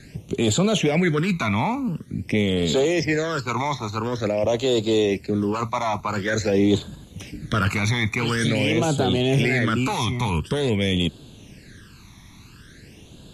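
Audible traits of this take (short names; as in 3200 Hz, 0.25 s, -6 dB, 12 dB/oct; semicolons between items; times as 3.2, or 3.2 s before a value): phasing stages 12, 0.47 Hz, lowest notch 490–1900 Hz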